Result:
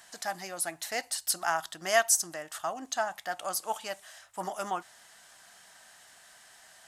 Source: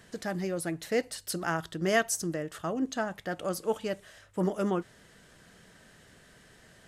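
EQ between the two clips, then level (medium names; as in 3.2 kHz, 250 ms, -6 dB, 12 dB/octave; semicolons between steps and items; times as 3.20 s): tone controls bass -11 dB, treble +8 dB; resonant low shelf 590 Hz -7.5 dB, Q 3; 0.0 dB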